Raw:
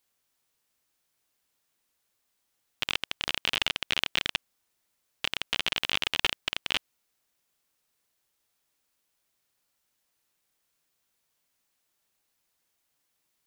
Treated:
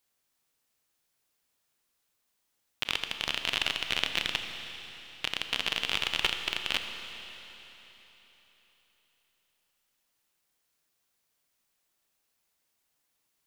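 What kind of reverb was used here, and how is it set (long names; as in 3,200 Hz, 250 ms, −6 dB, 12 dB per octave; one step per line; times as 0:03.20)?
four-comb reverb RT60 3.8 s, combs from 27 ms, DRR 6 dB
level −1.5 dB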